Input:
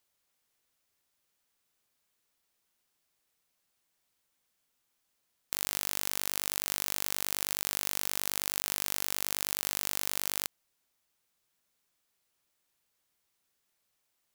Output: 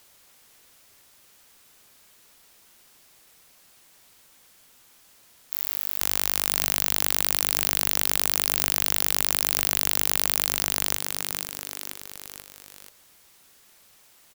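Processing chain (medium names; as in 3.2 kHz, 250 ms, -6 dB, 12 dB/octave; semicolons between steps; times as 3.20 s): frequency-shifting echo 485 ms, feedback 55%, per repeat -120 Hz, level -15 dB; sine folder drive 16 dB, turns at -4.5 dBFS; trim +2.5 dB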